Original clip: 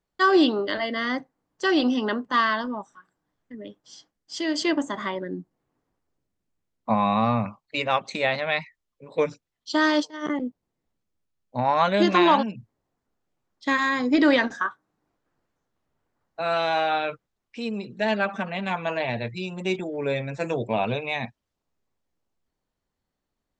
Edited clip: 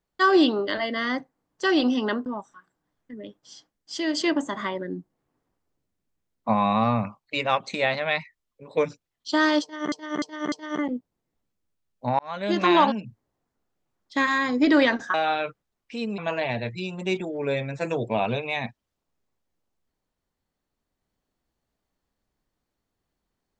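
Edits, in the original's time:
2.26–2.67 s: delete
10.03–10.33 s: loop, 4 plays
11.70–12.27 s: fade in
14.65–16.78 s: delete
17.82–18.77 s: delete

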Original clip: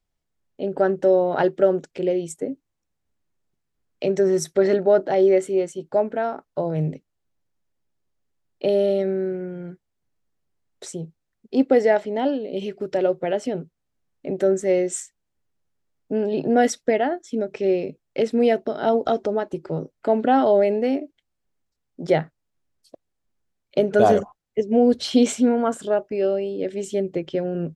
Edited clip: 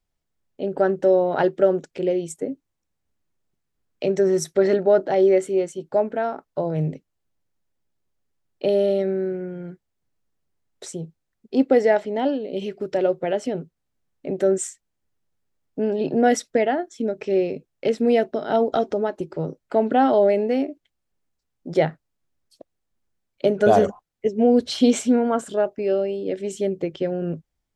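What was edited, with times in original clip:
14.58–14.91 s: delete

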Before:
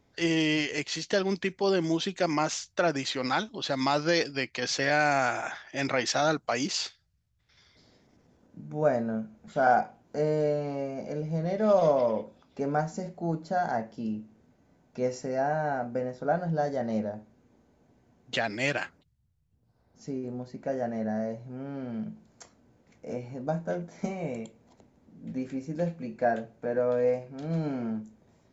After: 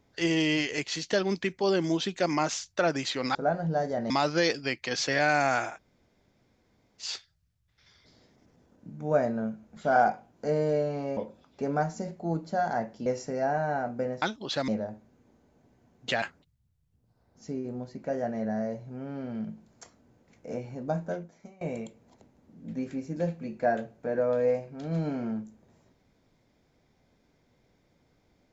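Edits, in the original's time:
3.35–3.81 s: swap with 16.18–16.93 s
5.42–6.77 s: room tone, crossfade 0.16 s
10.88–12.15 s: delete
14.04–15.02 s: delete
18.47–18.81 s: delete
23.65–24.20 s: fade out quadratic, to -21.5 dB

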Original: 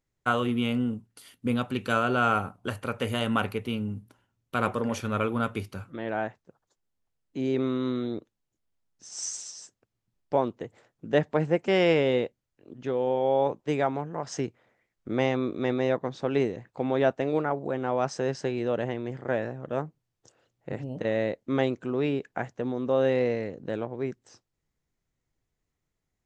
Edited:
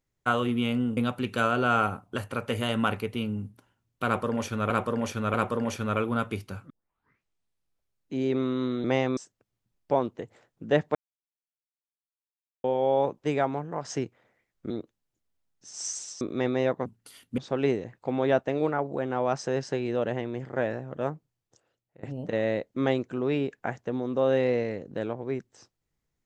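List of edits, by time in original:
0.97–1.49 s: move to 16.10 s
4.58–5.22 s: loop, 3 plays
5.94 s: tape start 1.44 s
8.08–9.59 s: swap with 15.12–15.45 s
11.37–13.06 s: mute
19.80–20.75 s: fade out, to -22 dB

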